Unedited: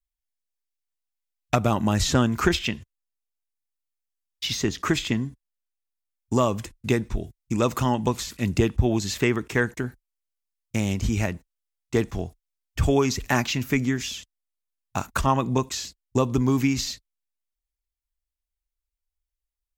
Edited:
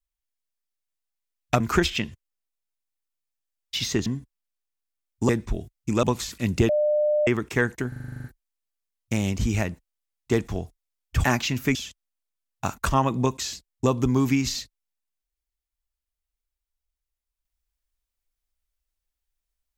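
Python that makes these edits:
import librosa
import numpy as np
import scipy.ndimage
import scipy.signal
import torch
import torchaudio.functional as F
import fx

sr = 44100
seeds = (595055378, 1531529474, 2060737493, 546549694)

y = fx.edit(x, sr, fx.cut(start_s=1.6, length_s=0.69),
    fx.cut(start_s=4.75, length_s=0.41),
    fx.cut(start_s=6.39, length_s=0.53),
    fx.cut(start_s=7.66, length_s=0.36),
    fx.bleep(start_s=8.68, length_s=0.58, hz=600.0, db=-18.5),
    fx.stutter(start_s=9.87, slice_s=0.04, count=10),
    fx.cut(start_s=12.87, length_s=0.42),
    fx.cut(start_s=13.8, length_s=0.27), tone=tone)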